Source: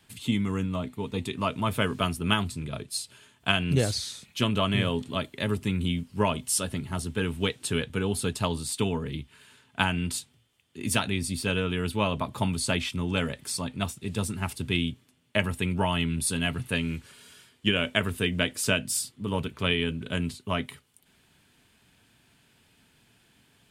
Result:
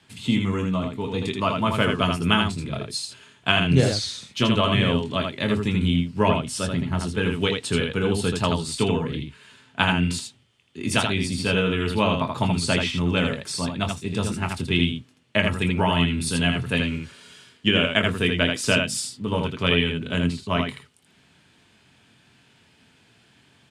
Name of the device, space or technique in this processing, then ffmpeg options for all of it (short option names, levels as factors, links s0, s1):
slapback doubling: -filter_complex "[0:a]asplit=3[s0][s1][s2];[s1]adelay=23,volume=0.376[s3];[s2]adelay=81,volume=0.596[s4];[s0][s3][s4]amix=inputs=3:normalize=0,highpass=77,asettb=1/sr,asplit=3[s5][s6][s7];[s5]atrim=end=6.294[s8];[s6]atrim=start=6.29:end=7,asetpts=PTS-STARTPTS,afade=t=in:d=0.004:c=qsin,afade=t=out:st=0.706:d=0.004:c=qsin,bass=f=250:g=3,treble=f=4000:g=-6[s9];[s7]atrim=start=6.996[s10];[s8][s9]acrossfade=d=0.004:c1=hsin:c2=qsin[s11];[s11][s10]acrossfade=d=0.004:c1=qsin:c2=hsin,lowpass=6900,volume=1.58"